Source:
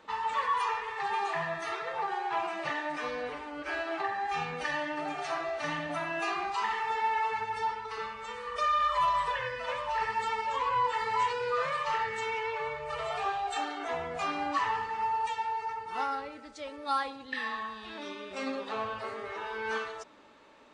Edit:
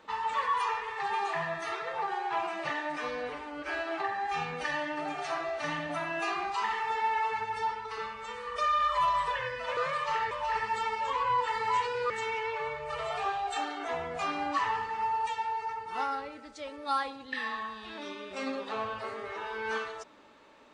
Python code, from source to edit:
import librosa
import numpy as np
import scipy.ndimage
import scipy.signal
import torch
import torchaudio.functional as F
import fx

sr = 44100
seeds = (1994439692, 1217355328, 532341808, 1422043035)

y = fx.edit(x, sr, fx.move(start_s=11.56, length_s=0.54, to_s=9.77), tone=tone)